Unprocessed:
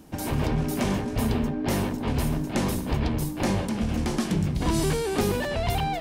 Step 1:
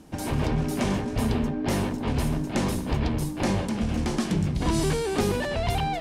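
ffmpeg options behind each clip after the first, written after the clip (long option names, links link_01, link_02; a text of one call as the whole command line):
ffmpeg -i in.wav -af "lowpass=11000" out.wav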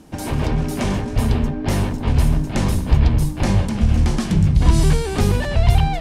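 ffmpeg -i in.wav -af "asubboost=boost=4.5:cutoff=140,volume=4dB" out.wav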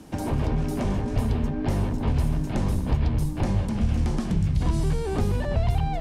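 ffmpeg -i in.wav -filter_complex "[0:a]acrossover=split=84|1200[link_01][link_02][link_03];[link_01]acompressor=threshold=-25dB:ratio=4[link_04];[link_02]acompressor=threshold=-25dB:ratio=4[link_05];[link_03]acompressor=threshold=-45dB:ratio=4[link_06];[link_04][link_05][link_06]amix=inputs=3:normalize=0" out.wav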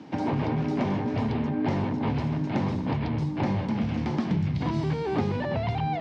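ffmpeg -i in.wav -af "highpass=frequency=110:width=0.5412,highpass=frequency=110:width=1.3066,equalizer=frequency=280:width_type=q:width=4:gain=4,equalizer=frequency=880:width_type=q:width=4:gain=5,equalizer=frequency=2100:width_type=q:width=4:gain=5,lowpass=frequency=4900:width=0.5412,lowpass=frequency=4900:width=1.3066" out.wav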